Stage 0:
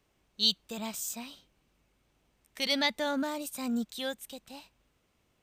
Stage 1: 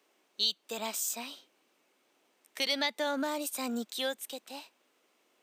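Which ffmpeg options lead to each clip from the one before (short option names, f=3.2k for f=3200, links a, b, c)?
-af "highpass=f=290:w=0.5412,highpass=f=290:w=1.3066,acompressor=threshold=-33dB:ratio=2.5,volume=4dB"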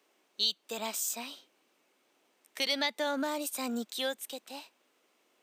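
-af anull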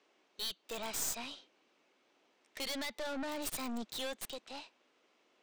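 -filter_complex "[0:a]acrossover=split=6900[a][b];[a]aeval=exprs='(tanh(79.4*val(0)+0.45)-tanh(0.45))/79.4':c=same[c];[b]acrusher=bits=4:dc=4:mix=0:aa=0.000001[d];[c][d]amix=inputs=2:normalize=0,volume=1.5dB"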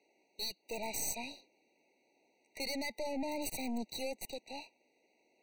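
-filter_complex "[0:a]asplit=2[a][b];[b]aeval=exprs='val(0)*gte(abs(val(0)),0.00251)':c=same,volume=-11.5dB[c];[a][c]amix=inputs=2:normalize=0,afftfilt=real='re*eq(mod(floor(b*sr/1024/950),2),0)':imag='im*eq(mod(floor(b*sr/1024/950),2),0)':win_size=1024:overlap=0.75"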